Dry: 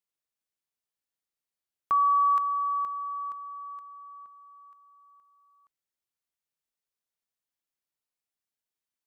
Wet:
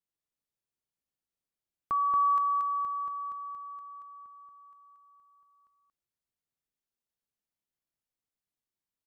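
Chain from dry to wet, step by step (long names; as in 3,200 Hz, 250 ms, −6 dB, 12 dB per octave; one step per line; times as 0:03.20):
low-shelf EQ 450 Hz +10.5 dB
single-tap delay 230 ms −3.5 dB
level −6.5 dB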